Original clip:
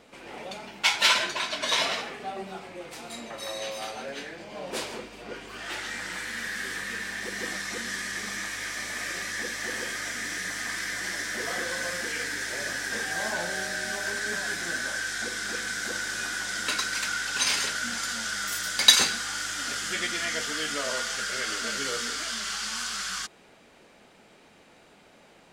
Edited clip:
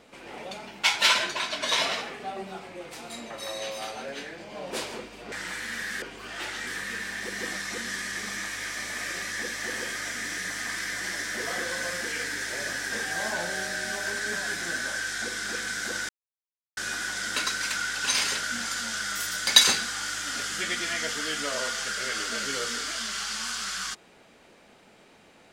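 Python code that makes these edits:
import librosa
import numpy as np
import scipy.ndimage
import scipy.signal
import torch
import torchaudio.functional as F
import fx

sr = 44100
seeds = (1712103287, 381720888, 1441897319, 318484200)

y = fx.edit(x, sr, fx.move(start_s=5.32, length_s=0.65, to_s=6.67),
    fx.insert_silence(at_s=16.09, length_s=0.68), tone=tone)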